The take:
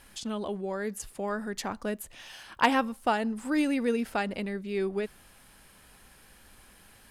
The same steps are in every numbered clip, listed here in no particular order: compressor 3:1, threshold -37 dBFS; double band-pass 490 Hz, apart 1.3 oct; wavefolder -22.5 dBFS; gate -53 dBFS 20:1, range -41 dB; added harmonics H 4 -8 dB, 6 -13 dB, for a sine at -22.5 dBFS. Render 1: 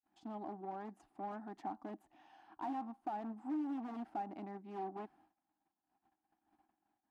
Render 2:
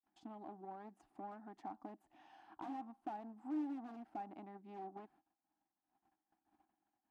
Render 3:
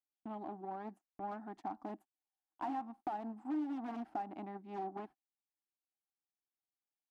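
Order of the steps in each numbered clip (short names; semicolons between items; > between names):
gate > added harmonics > wavefolder > double band-pass > compressor; wavefolder > added harmonics > compressor > gate > double band-pass; added harmonics > double band-pass > gate > compressor > wavefolder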